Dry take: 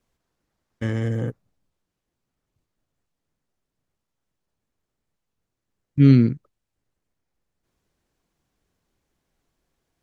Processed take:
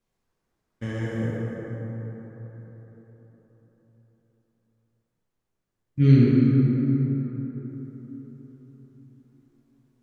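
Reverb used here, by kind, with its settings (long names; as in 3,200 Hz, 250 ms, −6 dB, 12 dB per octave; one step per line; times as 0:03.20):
dense smooth reverb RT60 4.5 s, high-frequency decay 0.4×, DRR −6.5 dB
level −7.5 dB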